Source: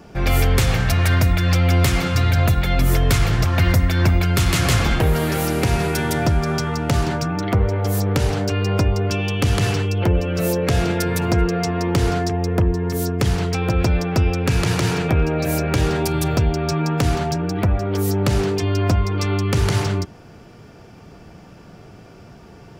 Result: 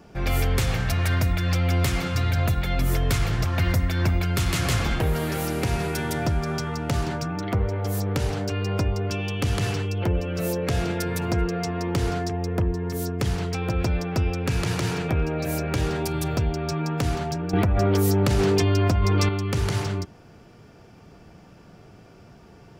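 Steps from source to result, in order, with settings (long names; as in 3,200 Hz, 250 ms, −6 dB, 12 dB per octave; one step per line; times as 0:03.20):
0:17.53–0:19.29: envelope flattener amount 100%
level −6 dB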